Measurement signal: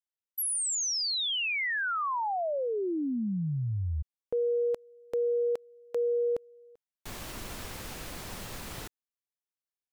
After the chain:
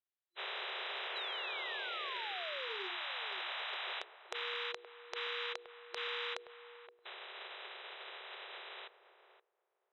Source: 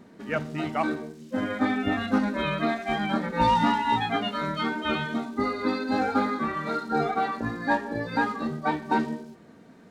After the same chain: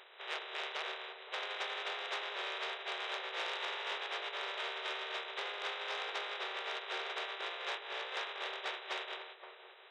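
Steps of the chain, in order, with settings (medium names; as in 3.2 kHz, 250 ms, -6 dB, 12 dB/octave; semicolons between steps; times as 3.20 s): spectral contrast reduction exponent 0.13; hum notches 60/120/180/240/300/360/420/480 Hz; FFT band-pass 350–4000 Hz; compression 6:1, threshold -34 dBFS; on a send: filtered feedback delay 522 ms, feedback 15%, low-pass 940 Hz, level -10 dB; on the sum: transformer saturation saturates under 2.6 kHz; trim -1.5 dB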